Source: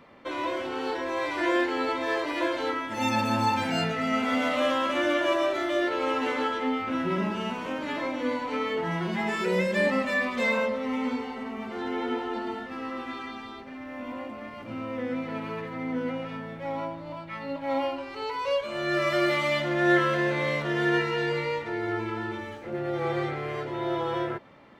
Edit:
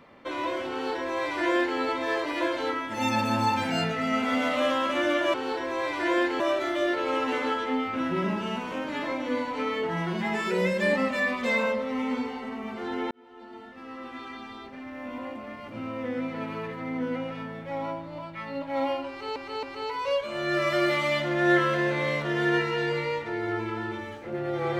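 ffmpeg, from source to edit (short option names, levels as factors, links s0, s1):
-filter_complex "[0:a]asplit=6[s0][s1][s2][s3][s4][s5];[s0]atrim=end=5.342[s6];[s1]atrim=start=0.718:end=1.782[s7];[s2]atrim=start=5.338:end=12.05,asetpts=PTS-STARTPTS,afade=t=out:st=6.708:d=0.004:c=hsin[s8];[s3]atrim=start=12.05:end=18.302,asetpts=PTS-STARTPTS,afade=t=in:d=1.64[s9];[s4]atrim=start=18.028:end=18.302[s10];[s5]atrim=start=18.028[s11];[s6][s7]acrossfade=d=0.004:c1=hsin:c2=hsin[s12];[s8][s9]concat=n=2:v=0:a=1[s13];[s12][s13]acrossfade=d=0.004:c1=hsin:c2=hsin[s14];[s14][s10]acrossfade=d=0.004:c1=hsin:c2=hsin[s15];[s15][s11]acrossfade=d=0.004:c1=hsin:c2=hsin"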